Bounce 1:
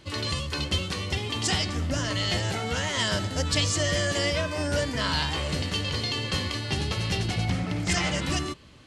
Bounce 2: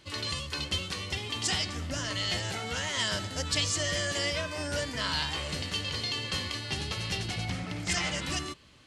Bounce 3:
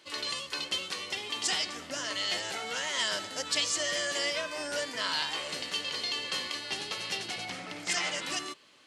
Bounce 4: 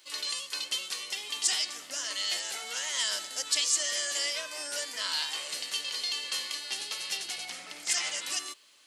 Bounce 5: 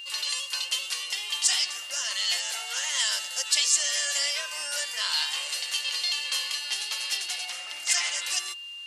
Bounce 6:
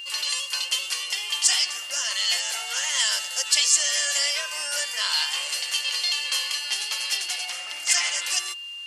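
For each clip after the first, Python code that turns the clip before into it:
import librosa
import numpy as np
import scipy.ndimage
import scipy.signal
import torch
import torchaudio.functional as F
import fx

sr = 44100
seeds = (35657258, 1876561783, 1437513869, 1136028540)

y1 = fx.tilt_shelf(x, sr, db=-3.0, hz=970.0)
y1 = F.gain(torch.from_numpy(y1), -5.0).numpy()
y2 = scipy.signal.sosfilt(scipy.signal.butter(2, 350.0, 'highpass', fs=sr, output='sos'), y1)
y3 = fx.riaa(y2, sr, side='recording')
y3 = F.gain(torch.from_numpy(y3), -5.5).numpy()
y4 = scipy.signal.sosfilt(scipy.signal.butter(2, 670.0, 'highpass', fs=sr, output='sos'), y3)
y4 = y4 + 0.39 * np.pad(y4, (int(5.7 * sr / 1000.0), 0))[:len(y4)]
y4 = y4 + 10.0 ** (-41.0 / 20.0) * np.sin(2.0 * np.pi * 2800.0 * np.arange(len(y4)) / sr)
y4 = F.gain(torch.from_numpy(y4), 3.5).numpy()
y5 = fx.notch(y4, sr, hz=3800.0, q=11.0)
y5 = F.gain(torch.from_numpy(y5), 3.5).numpy()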